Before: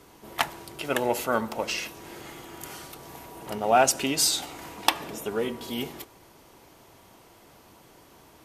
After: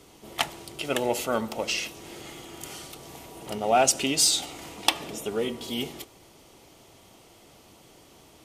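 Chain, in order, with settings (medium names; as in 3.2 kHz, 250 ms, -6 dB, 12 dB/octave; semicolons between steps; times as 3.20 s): treble shelf 5.7 kHz +5.5 dB; in parallel at -12 dB: saturation -18.5 dBFS, distortion -9 dB; on the sum: graphic EQ with 31 bands 1 kHz -6 dB, 1.6 kHz -7 dB, 3.15 kHz +3 dB, 12.5 kHz -11 dB; trim -1.5 dB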